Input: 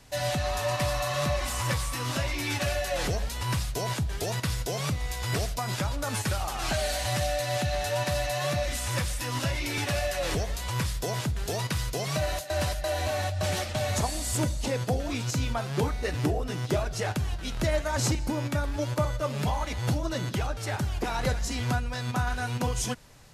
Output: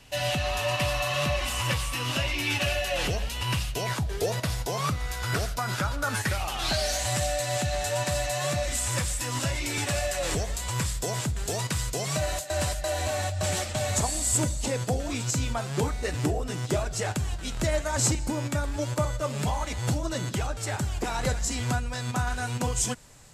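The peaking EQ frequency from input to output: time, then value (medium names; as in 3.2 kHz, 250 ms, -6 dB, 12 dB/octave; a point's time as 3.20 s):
peaking EQ +10.5 dB 0.38 oct
3.84 s 2.8 kHz
4.12 s 390 Hz
4.99 s 1.4 kHz
6.11 s 1.4 kHz
7.06 s 7.7 kHz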